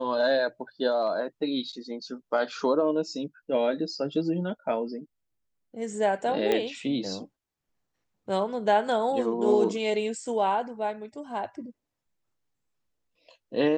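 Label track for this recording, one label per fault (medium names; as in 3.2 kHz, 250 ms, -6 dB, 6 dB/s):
6.520000	6.520000	pop -13 dBFS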